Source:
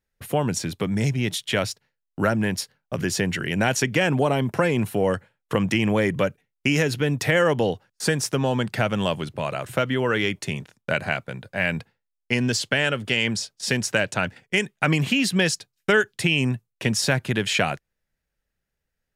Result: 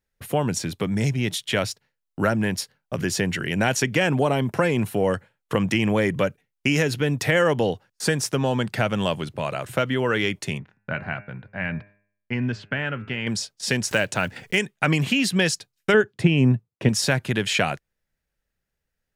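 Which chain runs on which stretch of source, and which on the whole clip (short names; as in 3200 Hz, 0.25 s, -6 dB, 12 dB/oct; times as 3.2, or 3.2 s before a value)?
10.58–13.27 LPF 1700 Hz + bell 510 Hz -8 dB 1.3 oct + de-hum 101.7 Hz, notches 27
13.91–14.6 block floating point 7-bit + upward compressor, threshold -23 dBFS
15.94–16.89 HPF 210 Hz 6 dB/oct + tilt -4 dB/oct
whole clip: dry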